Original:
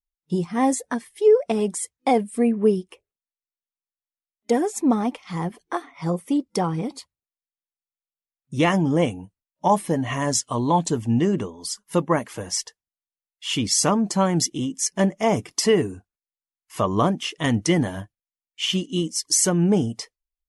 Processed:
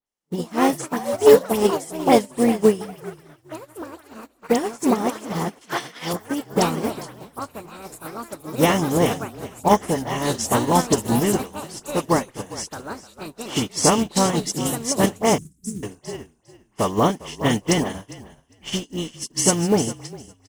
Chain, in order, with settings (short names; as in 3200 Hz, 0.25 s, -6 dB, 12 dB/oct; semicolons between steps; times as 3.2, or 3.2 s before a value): per-bin compression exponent 0.6; dispersion highs, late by 66 ms, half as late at 2400 Hz; frequency-shifting echo 0.404 s, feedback 46%, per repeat -37 Hz, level -8 dB; echoes that change speed 0.14 s, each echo +5 st, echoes 3, each echo -6 dB; 11.4–12.04 low shelf 440 Hz -5 dB; 15.38–15.83 inverse Chebyshev band-stop 700–2900 Hz, stop band 60 dB; companded quantiser 6-bit; 5.61–6.13 weighting filter D; upward expander 2.5:1, over -32 dBFS; gain +3.5 dB